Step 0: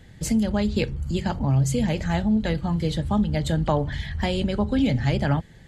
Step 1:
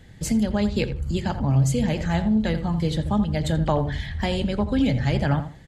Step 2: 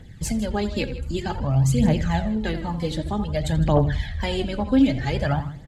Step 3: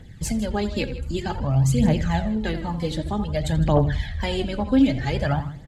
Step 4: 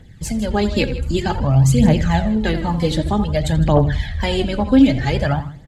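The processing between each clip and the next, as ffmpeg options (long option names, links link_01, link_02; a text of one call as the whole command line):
ffmpeg -i in.wav -filter_complex "[0:a]asplit=2[link_01][link_02];[link_02]adelay=83,lowpass=frequency=2000:poles=1,volume=-10dB,asplit=2[link_03][link_04];[link_04]adelay=83,lowpass=frequency=2000:poles=1,volume=0.24,asplit=2[link_05][link_06];[link_06]adelay=83,lowpass=frequency=2000:poles=1,volume=0.24[link_07];[link_01][link_03][link_05][link_07]amix=inputs=4:normalize=0" out.wav
ffmpeg -i in.wav -af "aecho=1:1:158:0.141,aphaser=in_gain=1:out_gain=1:delay=4:decay=0.56:speed=0.53:type=triangular,volume=-1.5dB" out.wav
ffmpeg -i in.wav -af anull out.wav
ffmpeg -i in.wav -af "dynaudnorm=framelen=100:gausssize=9:maxgain=8dB" out.wav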